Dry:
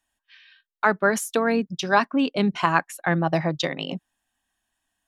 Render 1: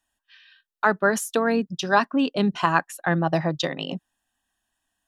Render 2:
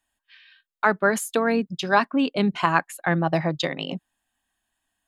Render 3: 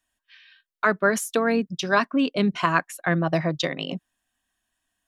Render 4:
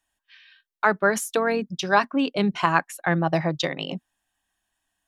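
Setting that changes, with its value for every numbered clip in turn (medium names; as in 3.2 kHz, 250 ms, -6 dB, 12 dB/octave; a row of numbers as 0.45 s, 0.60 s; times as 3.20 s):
band-stop, frequency: 2.2 kHz, 5.7 kHz, 840 Hz, 240 Hz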